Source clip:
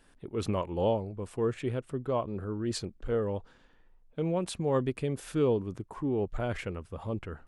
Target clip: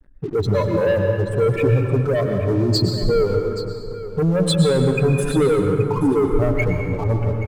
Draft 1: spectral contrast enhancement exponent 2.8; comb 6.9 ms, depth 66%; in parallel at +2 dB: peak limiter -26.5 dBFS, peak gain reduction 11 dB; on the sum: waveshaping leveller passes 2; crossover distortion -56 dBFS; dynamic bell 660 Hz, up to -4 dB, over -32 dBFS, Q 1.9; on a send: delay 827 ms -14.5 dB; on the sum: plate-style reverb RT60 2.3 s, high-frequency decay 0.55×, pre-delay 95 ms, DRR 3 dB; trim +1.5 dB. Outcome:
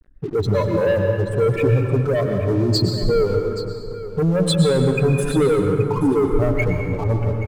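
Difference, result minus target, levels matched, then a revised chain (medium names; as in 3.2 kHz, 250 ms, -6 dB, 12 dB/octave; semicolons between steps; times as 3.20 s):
crossover distortion: distortion +7 dB
spectral contrast enhancement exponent 2.8; comb 6.9 ms, depth 66%; in parallel at +2 dB: peak limiter -26.5 dBFS, peak gain reduction 11 dB; on the sum: waveshaping leveller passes 2; crossover distortion -63 dBFS; dynamic bell 660 Hz, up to -4 dB, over -32 dBFS, Q 1.9; on a send: delay 827 ms -14.5 dB; on the sum: plate-style reverb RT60 2.3 s, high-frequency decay 0.55×, pre-delay 95 ms, DRR 3 dB; trim +1.5 dB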